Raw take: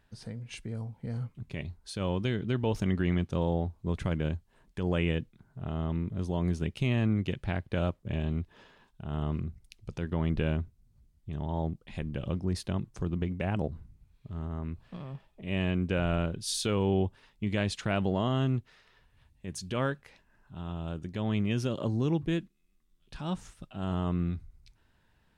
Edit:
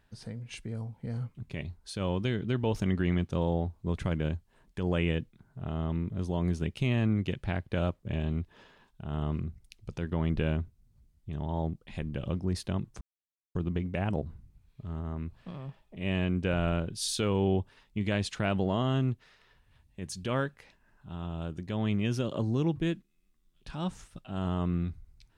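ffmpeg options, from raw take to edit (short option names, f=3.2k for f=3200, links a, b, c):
-filter_complex "[0:a]asplit=2[a][b];[a]atrim=end=13.01,asetpts=PTS-STARTPTS,afade=t=out:st=13.006:d=0.004:c=hsin,apad=pad_dur=0.54[c];[b]atrim=start=13.01,asetpts=PTS-STARTPTS,afade=t=in:d=0.004:c=hsin[d];[c][d]concat=n=2:v=0:a=1"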